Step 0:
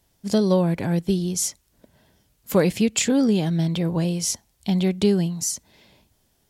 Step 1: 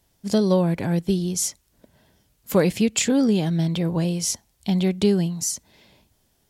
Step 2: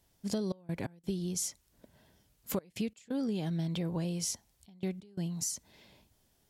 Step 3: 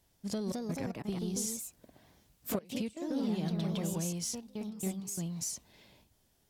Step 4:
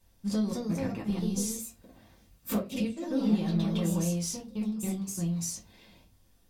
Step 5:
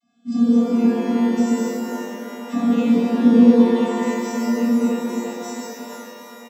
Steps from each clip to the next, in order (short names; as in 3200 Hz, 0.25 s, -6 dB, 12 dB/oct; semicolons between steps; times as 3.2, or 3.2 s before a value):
nothing audible
compressor 4:1, threshold -27 dBFS, peak gain reduction 12 dB; step gate "xxx.x.xxxxxx" 87 bpm -24 dB; gain -5 dB
in parallel at -5 dB: soft clip -36 dBFS, distortion -11 dB; on the sum: echoes that change speed 0.251 s, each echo +2 st, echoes 2; gain -4.5 dB
reverb RT60 0.30 s, pre-delay 3 ms, DRR -4 dB; gain -3 dB
vocoder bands 32, square 236 Hz; frequency-shifting echo 0.401 s, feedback 62%, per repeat +120 Hz, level -23 dB; shimmer reverb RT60 3.1 s, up +12 st, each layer -8 dB, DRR -7 dB; gain +8 dB